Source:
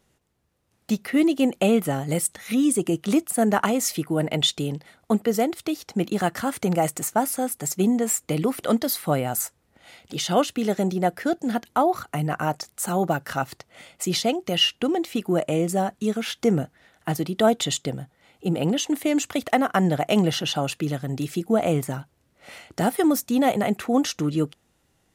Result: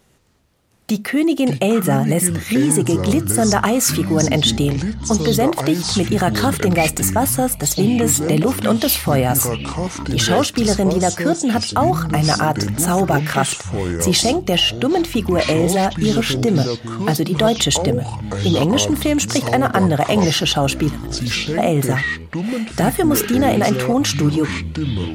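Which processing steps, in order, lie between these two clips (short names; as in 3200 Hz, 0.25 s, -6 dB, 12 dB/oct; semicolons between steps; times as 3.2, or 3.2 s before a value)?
1.88–2.37 bell 4400 Hz -6.5 dB 1.2 oct; 4.73–5.44 low-pass opened by the level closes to 2600 Hz, open at -22 dBFS; in parallel at +2.5 dB: negative-ratio compressor -24 dBFS, ratio -1; 20.89–21.58 on the sum: passive tone stack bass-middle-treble 5-5-5; on a send at -20.5 dB: reverb, pre-delay 4 ms; on the sum: echoes that change speed 0.132 s, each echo -7 st, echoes 3, each echo -6 dB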